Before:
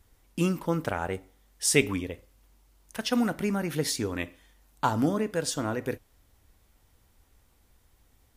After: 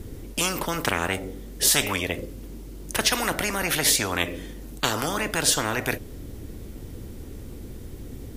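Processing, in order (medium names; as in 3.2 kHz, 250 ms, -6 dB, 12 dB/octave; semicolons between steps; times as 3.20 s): resonant low shelf 570 Hz +13 dB, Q 1.5; spectrum-flattening compressor 10:1; trim -7 dB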